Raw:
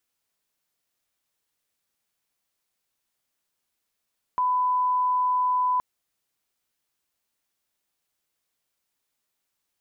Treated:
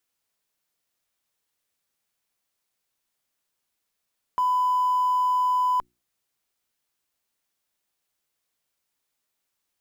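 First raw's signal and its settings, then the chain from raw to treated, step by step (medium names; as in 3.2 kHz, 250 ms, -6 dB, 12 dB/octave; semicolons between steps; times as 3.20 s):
line-up tone -20 dBFS 1.42 s
hum notches 60/120/180/240/300/360 Hz; in parallel at -11 dB: Schmitt trigger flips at -36 dBFS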